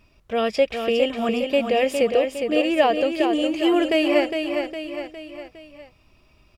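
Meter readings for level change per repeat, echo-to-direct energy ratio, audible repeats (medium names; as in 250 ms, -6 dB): -6.0 dB, -5.0 dB, 4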